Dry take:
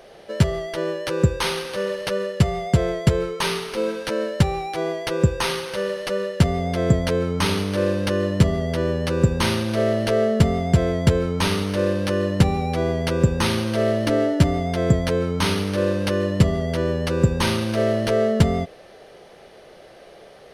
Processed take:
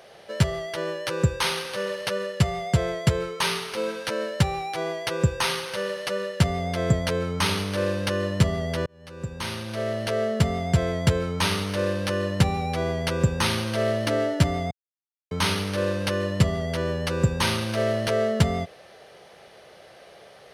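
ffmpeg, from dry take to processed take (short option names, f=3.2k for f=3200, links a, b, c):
-filter_complex "[0:a]asplit=4[a][b][c][d];[a]atrim=end=8.86,asetpts=PTS-STARTPTS,afade=t=out:st=8.856:d=0.004:c=hsin[e];[b]atrim=start=8.86:end=14.71,asetpts=PTS-STARTPTS,afade=t=in:d=2.28:c=qsin,afade=t=out:st=5.846:d=0.004:c=hsin[f];[c]atrim=start=14.71:end=15.31,asetpts=PTS-STARTPTS,volume=0[g];[d]atrim=start=15.31,asetpts=PTS-STARTPTS,afade=t=in:d=0.004:c=hsin[h];[e][f][g][h]concat=n=4:v=0:a=1,highpass=82,equalizer=f=300:t=o:w=1.7:g=-7.5"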